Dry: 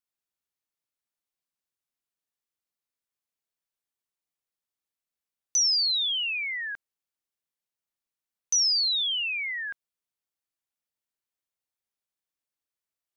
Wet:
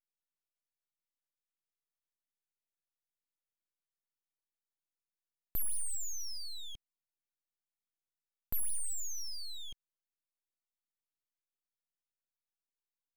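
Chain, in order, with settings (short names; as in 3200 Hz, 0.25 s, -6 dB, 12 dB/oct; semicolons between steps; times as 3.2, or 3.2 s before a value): steep high-pass 1100 Hz 96 dB/oct; full-wave rectifier; gain -7.5 dB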